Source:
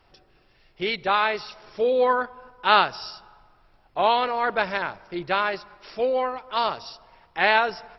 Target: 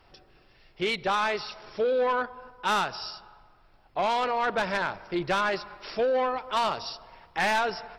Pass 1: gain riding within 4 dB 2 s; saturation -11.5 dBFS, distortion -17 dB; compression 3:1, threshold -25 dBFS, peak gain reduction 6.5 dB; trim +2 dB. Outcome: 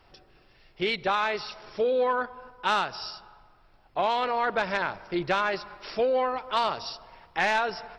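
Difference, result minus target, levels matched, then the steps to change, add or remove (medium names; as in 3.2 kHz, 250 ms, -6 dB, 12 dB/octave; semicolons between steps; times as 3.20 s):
saturation: distortion -7 dB
change: saturation -19 dBFS, distortion -10 dB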